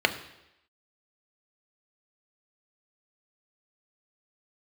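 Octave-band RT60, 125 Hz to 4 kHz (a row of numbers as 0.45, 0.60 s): 0.75, 0.85, 0.90, 0.85, 0.90, 0.90 s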